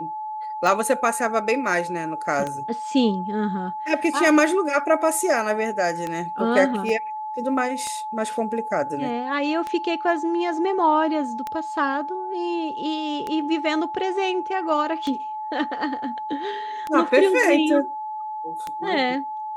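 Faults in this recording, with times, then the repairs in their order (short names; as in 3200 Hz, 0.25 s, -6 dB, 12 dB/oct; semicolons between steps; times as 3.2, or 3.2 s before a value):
tick 33 1/3 rpm
tone 860 Hz -28 dBFS
6.89 gap 2.2 ms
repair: de-click; notch 860 Hz, Q 30; interpolate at 6.89, 2.2 ms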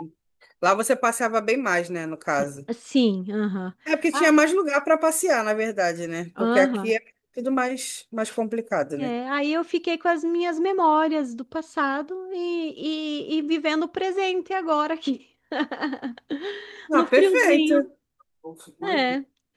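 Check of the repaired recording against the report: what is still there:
none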